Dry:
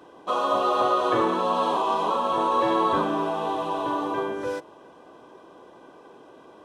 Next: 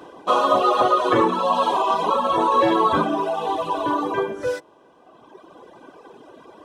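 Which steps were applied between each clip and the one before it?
reverb removal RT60 2 s; gain +7.5 dB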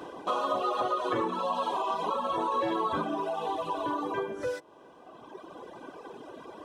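compressor 2:1, threshold -36 dBFS, peak gain reduction 12.5 dB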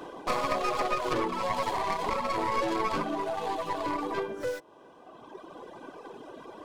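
tracing distortion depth 0.21 ms

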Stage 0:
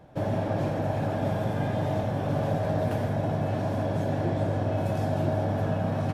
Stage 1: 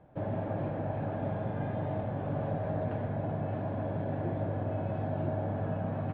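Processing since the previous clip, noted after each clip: Bessel low-pass 2000 Hz, order 8; gain -6 dB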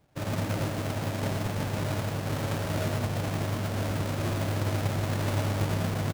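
half-waves squared off; echo 0.111 s -5.5 dB; upward expander 1.5:1, over -47 dBFS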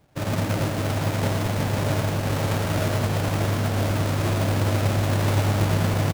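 echo 0.63 s -6.5 dB; gain +5.5 dB

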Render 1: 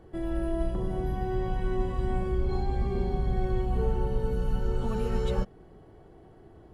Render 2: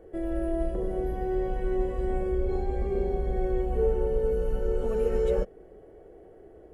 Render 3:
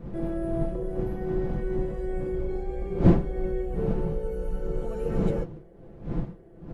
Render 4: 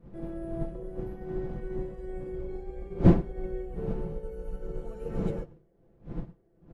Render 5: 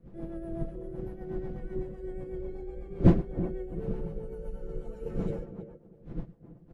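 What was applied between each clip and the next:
ten-band EQ 125 Hz -11 dB, 250 Hz -3 dB, 500 Hz +12 dB, 1000 Hz -9 dB, 2000 Hz +3 dB, 4000 Hz -11 dB
wind noise 200 Hz -27 dBFS; comb 5.9 ms, depth 56%; gain -4 dB
outdoor echo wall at 17 m, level -16 dB; upward expander 1.5:1, over -44 dBFS
tape echo 0.328 s, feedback 27%, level -8.5 dB, low-pass 1000 Hz; rotary speaker horn 8 Hz

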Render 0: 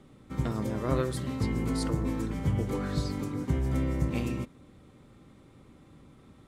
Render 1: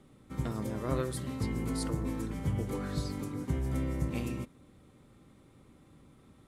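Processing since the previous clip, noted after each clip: bell 11000 Hz +6.5 dB 0.78 oct; gain -4 dB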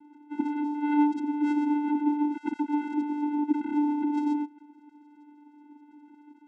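sine-wave speech; vocoder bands 4, square 295 Hz; gain +7 dB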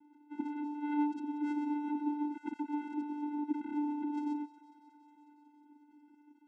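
thin delay 0.182 s, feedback 80%, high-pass 1500 Hz, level -14 dB; gain -9 dB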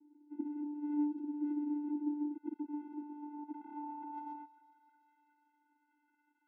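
band-pass sweep 360 Hz -> 1600 Hz, 2.49–5.18; gain +1.5 dB

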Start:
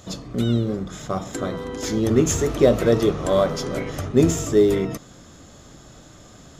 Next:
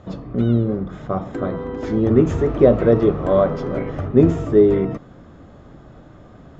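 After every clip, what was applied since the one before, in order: Bessel low-pass 1300 Hz, order 2; gain +3.5 dB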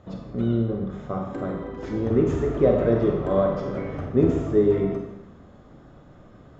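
Schroeder reverb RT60 0.87 s, combs from 31 ms, DRR 2 dB; gain -7 dB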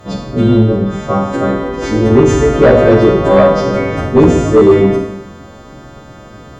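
frequency quantiser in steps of 2 st; sine folder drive 5 dB, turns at -8.5 dBFS; gain +7 dB

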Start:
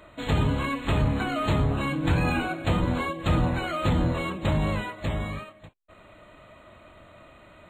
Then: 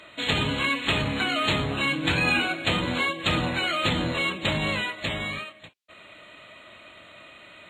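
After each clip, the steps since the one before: weighting filter D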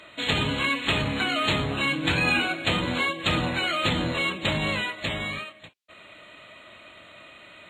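nothing audible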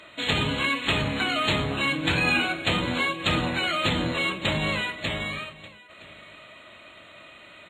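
echo 0.967 s -21.5 dB; on a send at -17 dB: reverb RT60 0.45 s, pre-delay 27 ms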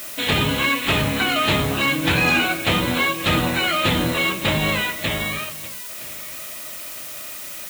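added noise blue -39 dBFS; slew limiter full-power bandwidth 230 Hz; gain +5.5 dB

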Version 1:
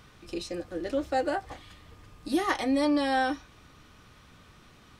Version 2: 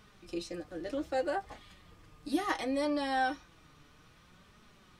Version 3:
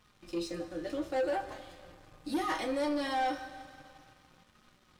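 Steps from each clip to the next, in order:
flange 0.65 Hz, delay 4.6 ms, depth 2.4 ms, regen +47%; gain -1 dB
two-slope reverb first 0.23 s, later 2.7 s, from -19 dB, DRR 2 dB; sample leveller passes 2; gain -8 dB

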